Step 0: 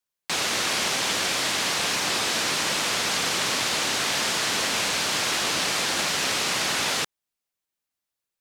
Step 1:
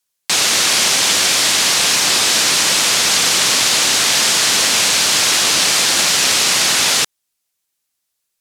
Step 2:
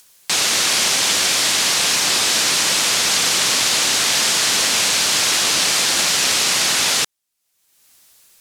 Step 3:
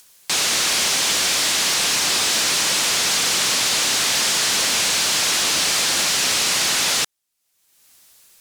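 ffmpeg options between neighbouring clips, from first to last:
-af "equalizer=f=9.2k:t=o:w=2.8:g=9,volume=5.5dB"
-af "acompressor=mode=upward:threshold=-28dB:ratio=2.5,volume=-3dB"
-af "asoftclip=type=tanh:threshold=-13dB"

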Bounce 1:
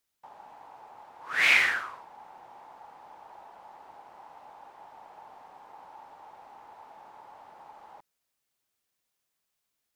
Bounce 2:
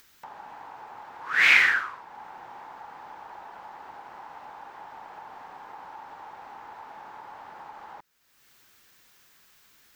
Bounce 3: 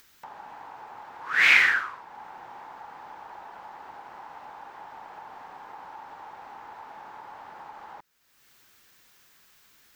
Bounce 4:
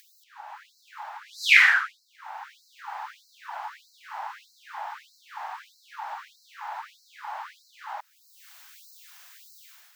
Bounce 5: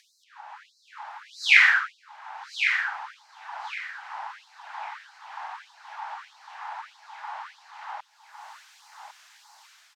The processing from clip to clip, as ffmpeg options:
-filter_complex "[0:a]equalizer=f=630:t=o:w=0.67:g=-5,equalizer=f=1.6k:t=o:w=0.67:g=5,equalizer=f=10k:t=o:w=0.67:g=-7,asplit=2[a][b];[b]acompressor=mode=upward:threshold=-31dB:ratio=2.5,volume=-2.5dB[c];[a][c]amix=inputs=2:normalize=0,volume=-3dB"
-af anull
-af "dynaudnorm=f=440:g=3:m=9dB,afftfilt=real='re*gte(b*sr/1024,560*pow(4000/560,0.5+0.5*sin(2*PI*1.6*pts/sr)))':imag='im*gte(b*sr/1024,560*pow(4000/560,0.5+0.5*sin(2*PI*1.6*pts/sr)))':win_size=1024:overlap=0.75"
-af "highpass=690,lowpass=7.2k,aecho=1:1:1105|2210|3315:0.398|0.0995|0.0249"

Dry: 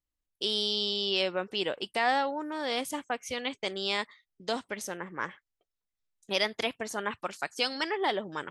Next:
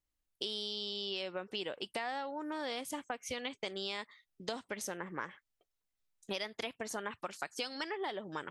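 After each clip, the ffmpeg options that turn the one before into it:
-af "acompressor=threshold=-37dB:ratio=6,volume=1dB"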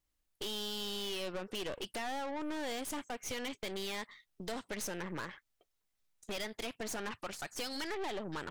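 -af "aeval=exprs='(tanh(158*val(0)+0.7)-tanh(0.7))/158':c=same,volume=8dB"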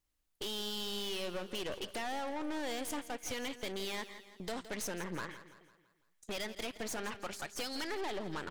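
-af "aecho=1:1:167|334|501|668|835:0.211|0.101|0.0487|0.0234|0.0112"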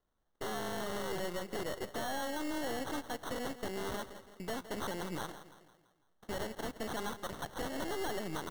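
-af "acrusher=samples=18:mix=1:aa=0.000001,volume=1dB"

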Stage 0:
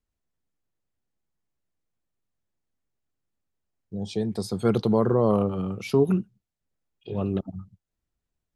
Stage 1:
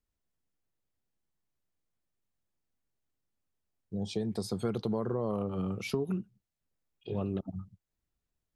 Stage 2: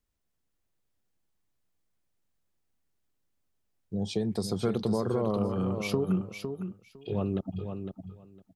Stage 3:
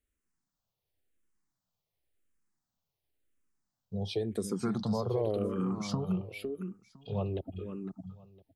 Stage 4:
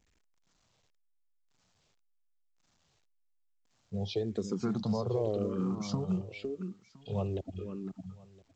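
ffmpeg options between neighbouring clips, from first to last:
-af "acompressor=threshold=-26dB:ratio=6,volume=-2.5dB"
-af "aecho=1:1:507|1014:0.422|0.0633,volume=3.5dB"
-filter_complex "[0:a]asplit=2[a][b];[b]afreqshift=-0.93[c];[a][c]amix=inputs=2:normalize=1"
-af "adynamicequalizer=threshold=0.00224:dfrequency=1900:dqfactor=0.74:tfrequency=1900:tqfactor=0.74:attack=5:release=100:ratio=0.375:range=2.5:mode=cutabove:tftype=bell" -ar 16000 -c:a pcm_alaw

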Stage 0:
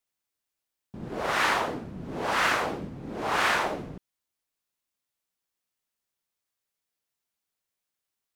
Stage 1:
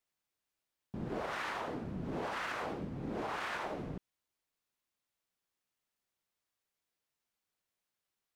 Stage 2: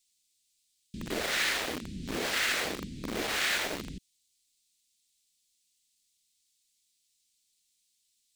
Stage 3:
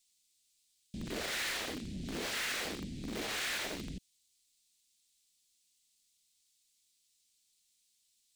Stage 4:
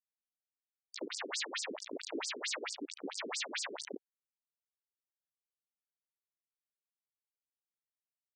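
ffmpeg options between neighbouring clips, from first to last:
-af "highshelf=f=5.1k:g=-6,alimiter=level_in=0.5dB:limit=-24dB:level=0:latency=1:release=308,volume=-0.5dB,acompressor=threshold=-35dB:ratio=6"
-filter_complex "[0:a]equalizer=f=125:t=o:w=1:g=-11,equalizer=f=1k:t=o:w=1:g=-12,equalizer=f=2k:t=o:w=1:g=6,equalizer=f=4k:t=o:w=1:g=8,equalizer=f=8k:t=o:w=1:g=12,acrossover=split=300|2600[a][b][c];[b]acrusher=bits=6:mix=0:aa=0.000001[d];[a][d][c]amix=inputs=3:normalize=0,volume=7dB"
-af "asoftclip=type=tanh:threshold=-33.5dB"
-af "aeval=exprs='0.0224*(cos(1*acos(clip(val(0)/0.0224,-1,1)))-cos(1*PI/2))+0.00447*(cos(3*acos(clip(val(0)/0.0224,-1,1)))-cos(3*PI/2))+0.000708*(cos(7*acos(clip(val(0)/0.0224,-1,1)))-cos(7*PI/2))':c=same,acrusher=bits=4:dc=4:mix=0:aa=0.000001,afftfilt=real='re*between(b*sr/1024,300*pow(6600/300,0.5+0.5*sin(2*PI*4.5*pts/sr))/1.41,300*pow(6600/300,0.5+0.5*sin(2*PI*4.5*pts/sr))*1.41)':imag='im*between(b*sr/1024,300*pow(6600/300,0.5+0.5*sin(2*PI*4.5*pts/sr))/1.41,300*pow(6600/300,0.5+0.5*sin(2*PI*4.5*pts/sr))*1.41)':win_size=1024:overlap=0.75,volume=12.5dB"

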